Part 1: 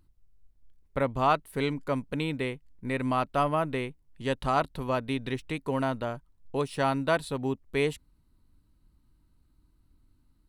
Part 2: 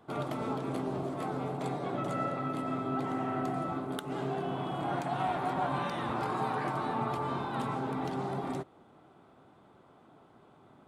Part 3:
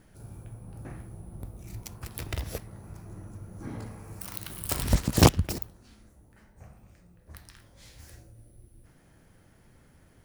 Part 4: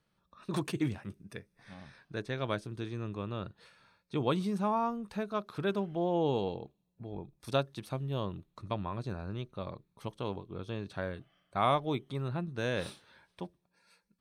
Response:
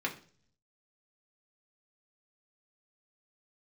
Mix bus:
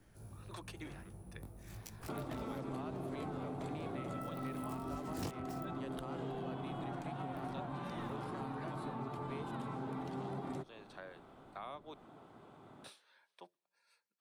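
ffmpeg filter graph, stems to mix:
-filter_complex "[0:a]alimiter=limit=-19dB:level=0:latency=1,adelay=1550,volume=-10dB[a];[1:a]alimiter=level_in=1dB:limit=-24dB:level=0:latency=1:release=279,volume=-1dB,adelay=2000,volume=1dB[b];[2:a]flanger=delay=18.5:depth=2.9:speed=0.46,volume=-3.5dB[c];[3:a]highpass=560,volume=-7.5dB,asplit=3[d][e][f];[d]atrim=end=11.94,asetpts=PTS-STARTPTS,afade=t=out:st=11.936:d=0.004:c=hsin[g];[e]atrim=start=11.94:end=12.84,asetpts=PTS-STARTPTS,volume=0[h];[f]atrim=start=12.84,asetpts=PTS-STARTPTS,afade=t=in:d=0.004:c=hsin[i];[g][h][i]concat=n=3:v=0:a=1,asplit=2[j][k];[k]apad=whole_len=451879[l];[c][l]sidechaincompress=threshold=-44dB:ratio=8:attack=37:release=627[m];[a][b][m][j]amix=inputs=4:normalize=0,acrossover=split=140|330[n][o][p];[n]acompressor=threshold=-52dB:ratio=4[q];[o]acompressor=threshold=-45dB:ratio=4[r];[p]acompressor=threshold=-46dB:ratio=4[s];[q][r][s]amix=inputs=3:normalize=0"

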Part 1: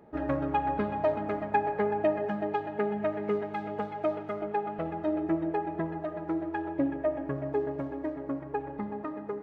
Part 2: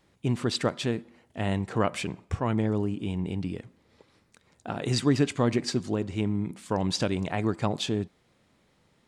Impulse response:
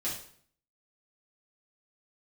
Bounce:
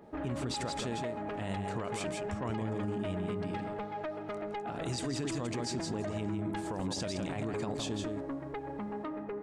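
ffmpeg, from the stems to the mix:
-filter_complex "[0:a]acompressor=threshold=-32dB:ratio=6,aeval=exprs='0.0794*sin(PI/2*2.51*val(0)/0.0794)':c=same,volume=-11dB[a];[1:a]adynamicequalizer=threshold=0.00316:dfrequency=7600:dqfactor=0.78:tfrequency=7600:tqfactor=0.78:attack=5:release=100:ratio=0.375:range=4:mode=boostabove:tftype=bell,volume=-6dB,asplit=2[b][c];[c]volume=-7.5dB,aecho=0:1:164:1[d];[a][b][d]amix=inputs=3:normalize=0,alimiter=level_in=3dB:limit=-24dB:level=0:latency=1:release=31,volume=-3dB"

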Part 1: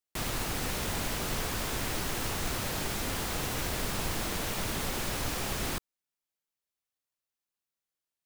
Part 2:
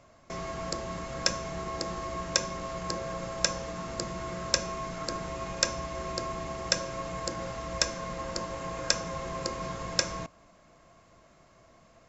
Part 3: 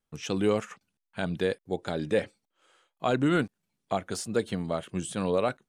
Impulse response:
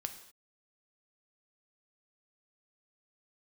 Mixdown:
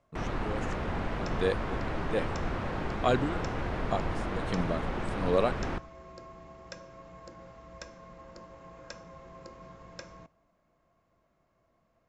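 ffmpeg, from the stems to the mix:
-filter_complex "[0:a]lowpass=1.6k,volume=-0.5dB,asplit=2[a][b];[b]volume=-7.5dB[c];[1:a]lowpass=f=1.8k:p=1,volume=-14.5dB,asplit=2[d][e];[e]volume=-10dB[f];[2:a]lowpass=9k,aeval=exprs='val(0)*pow(10,-20*(0.5-0.5*cos(2*PI*1.3*n/s))/20)':c=same,volume=1dB[g];[3:a]atrim=start_sample=2205[h];[c][f]amix=inputs=2:normalize=0[i];[i][h]afir=irnorm=-1:irlink=0[j];[a][d][g][j]amix=inputs=4:normalize=0"

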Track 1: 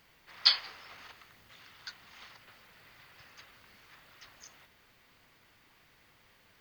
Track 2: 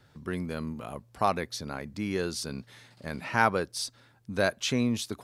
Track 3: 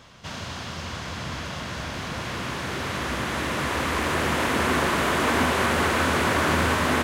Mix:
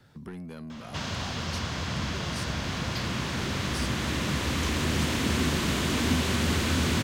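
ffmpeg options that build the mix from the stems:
-filter_complex "[0:a]adelay=2500,volume=-7.5dB[a];[1:a]equalizer=f=200:t=o:w=0.77:g=5.5,volume=1dB[b];[2:a]equalizer=f=11k:t=o:w=0.77:g=-8,adelay=700,volume=3dB[c];[a][b]amix=inputs=2:normalize=0,asoftclip=type=tanh:threshold=-26dB,acompressor=threshold=-38dB:ratio=6,volume=0dB[d];[c][d]amix=inputs=2:normalize=0,acrossover=split=280|3000[e][f][g];[f]acompressor=threshold=-35dB:ratio=6[h];[e][h][g]amix=inputs=3:normalize=0"

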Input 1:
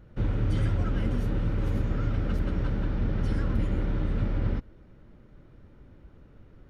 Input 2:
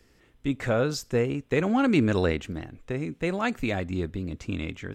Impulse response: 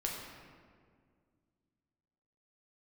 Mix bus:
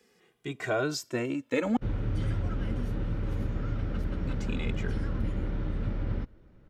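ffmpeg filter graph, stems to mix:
-filter_complex "[0:a]adelay=1650,volume=-4dB[a];[1:a]highpass=210,asplit=2[b][c];[c]adelay=2,afreqshift=-0.44[d];[b][d]amix=inputs=2:normalize=1,volume=1.5dB,asplit=3[e][f][g];[e]atrim=end=1.77,asetpts=PTS-STARTPTS,afade=t=out:st=1.766:d=0.004:c=hsin[h];[f]atrim=start=1.77:end=4.25,asetpts=PTS-STARTPTS,volume=0[i];[g]atrim=start=4.25,asetpts=PTS-STARTPTS,afade=t=in:d=0.004:c=hsin[j];[h][i][j]concat=n=3:v=0:a=1[k];[a][k]amix=inputs=2:normalize=0"

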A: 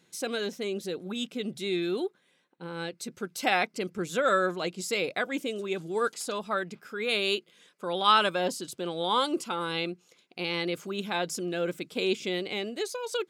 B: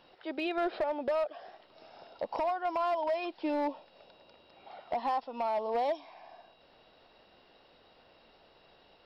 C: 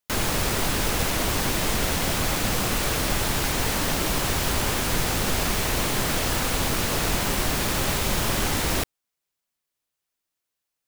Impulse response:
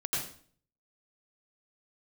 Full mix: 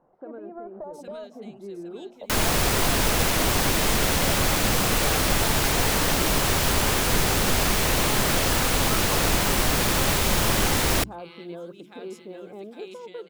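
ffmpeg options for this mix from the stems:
-filter_complex "[0:a]volume=-4.5dB,asplit=2[a][b];[b]volume=-12.5dB[c];[1:a]volume=-2dB[d];[2:a]adelay=2200,volume=2.5dB[e];[a][d]amix=inputs=2:normalize=0,lowpass=f=1.1k:w=0.5412,lowpass=f=1.1k:w=1.3066,alimiter=level_in=6dB:limit=-24dB:level=0:latency=1:release=277,volume=-6dB,volume=0dB[f];[c]aecho=0:1:808|1616|2424|3232|4040|4848:1|0.44|0.194|0.0852|0.0375|0.0165[g];[e][f][g]amix=inputs=3:normalize=0,bandreject=f=60:t=h:w=6,bandreject=f=120:t=h:w=6,bandreject=f=180:t=h:w=6,bandreject=f=240:t=h:w=6,bandreject=f=300:t=h:w=6,bandreject=f=360:t=h:w=6"

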